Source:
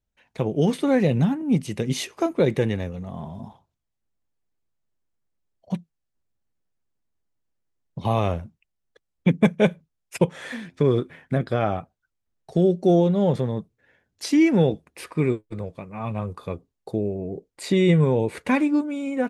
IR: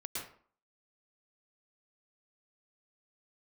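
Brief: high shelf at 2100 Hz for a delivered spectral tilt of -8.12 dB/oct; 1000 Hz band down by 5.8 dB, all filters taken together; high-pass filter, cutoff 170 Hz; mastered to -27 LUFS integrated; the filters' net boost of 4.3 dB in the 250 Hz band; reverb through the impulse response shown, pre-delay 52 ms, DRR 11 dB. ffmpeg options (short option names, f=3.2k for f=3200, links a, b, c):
-filter_complex "[0:a]highpass=170,equalizer=f=250:t=o:g=8,equalizer=f=1k:t=o:g=-8.5,highshelf=f=2.1k:g=-4,asplit=2[a][b];[1:a]atrim=start_sample=2205,adelay=52[c];[b][c]afir=irnorm=-1:irlink=0,volume=-11.5dB[d];[a][d]amix=inputs=2:normalize=0,volume=-6.5dB"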